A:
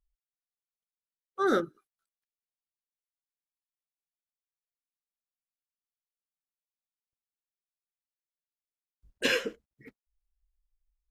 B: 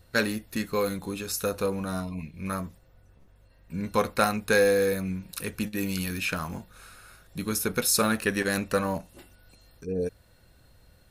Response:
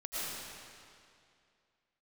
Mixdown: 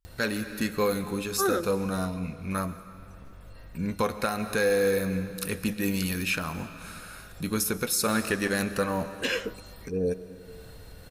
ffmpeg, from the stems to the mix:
-filter_complex "[0:a]volume=1.5dB[a];[1:a]acompressor=mode=upward:threshold=-38dB:ratio=2.5,adelay=50,volume=1dB,asplit=2[b][c];[c]volume=-16dB[d];[2:a]atrim=start_sample=2205[e];[d][e]afir=irnorm=-1:irlink=0[f];[a][b][f]amix=inputs=3:normalize=0,alimiter=limit=-15dB:level=0:latency=1:release=266"

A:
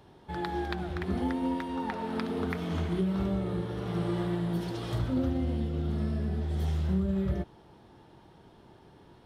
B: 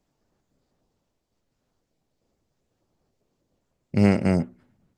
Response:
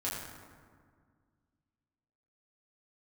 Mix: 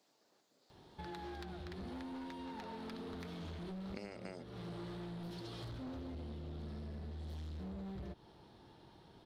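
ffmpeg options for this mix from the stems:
-filter_complex "[0:a]volume=30.5dB,asoftclip=hard,volume=-30.5dB,adelay=700,volume=-5.5dB[a];[1:a]highpass=360,acompressor=threshold=-31dB:ratio=4,volume=2.5dB[b];[a][b]amix=inputs=2:normalize=0,equalizer=f=4.2k:w=1.9:g=8,acompressor=threshold=-44dB:ratio=8"

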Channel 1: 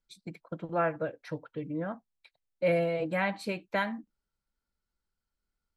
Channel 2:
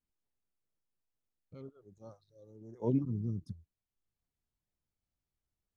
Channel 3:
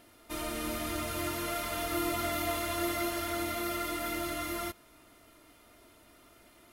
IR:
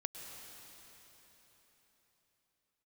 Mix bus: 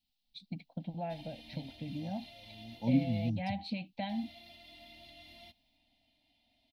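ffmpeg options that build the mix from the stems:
-filter_complex "[0:a]tiltshelf=f=970:g=4.5,acompressor=threshold=-30dB:ratio=6,adelay=250,volume=-3dB[a];[1:a]aemphasis=mode=production:type=75kf,volume=1dB[b];[2:a]alimiter=level_in=3.5dB:limit=-24dB:level=0:latency=1:release=382,volume=-3.5dB,adelay=800,volume=-16dB,asplit=3[c][d][e];[c]atrim=end=3.3,asetpts=PTS-STARTPTS,afade=t=out:st=3.296:d=0.004:c=hsin[f];[d]atrim=start=3.3:end=4.09,asetpts=PTS-STARTPTS,volume=0[g];[e]atrim=start=4.09,asetpts=PTS-STARTPTS,afade=t=in:d=0.004:c=hsin[h];[f][g][h]concat=n=3:v=0:a=1[i];[a][b][i]amix=inputs=3:normalize=0,firequalizer=gain_entry='entry(150,0);entry(260,5);entry(380,-23);entry(540,-8);entry(780,6);entry(1200,-28);entry(1900,-3);entry(2800,8);entry(4000,11);entry(6800,-14)':delay=0.05:min_phase=1"

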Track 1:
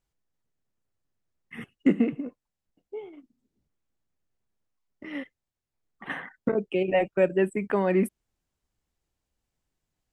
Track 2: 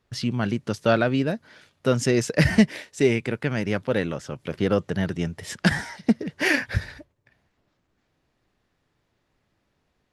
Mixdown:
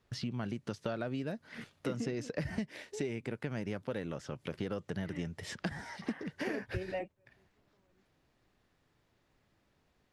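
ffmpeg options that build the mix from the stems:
-filter_complex "[0:a]volume=-6dB[a];[1:a]acrossover=split=1200|6100[b][c][d];[b]acompressor=threshold=-22dB:ratio=4[e];[c]acompressor=threshold=-37dB:ratio=4[f];[d]acompressor=threshold=-55dB:ratio=4[g];[e][f][g]amix=inputs=3:normalize=0,volume=-1.5dB,asplit=2[h][i];[i]apad=whole_len=446726[j];[a][j]sidechaingate=range=-46dB:threshold=-55dB:ratio=16:detection=peak[k];[k][h]amix=inputs=2:normalize=0,acompressor=threshold=-41dB:ratio=2"

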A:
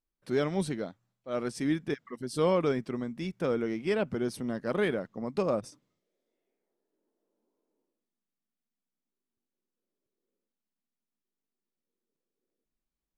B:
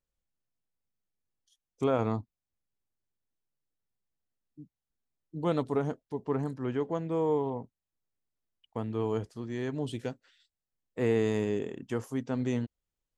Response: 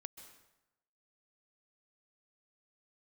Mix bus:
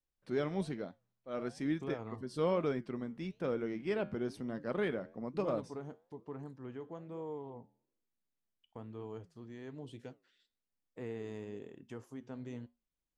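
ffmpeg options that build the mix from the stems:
-filter_complex "[0:a]highshelf=f=6.6k:g=-7.5,volume=-1.5dB[a];[1:a]acompressor=threshold=-50dB:ratio=1.5,volume=-1.5dB[b];[a][b]amix=inputs=2:normalize=0,highshelf=f=8.4k:g=-6.5,flanger=delay=6.2:depth=6.1:regen=-84:speed=1.1:shape=sinusoidal"

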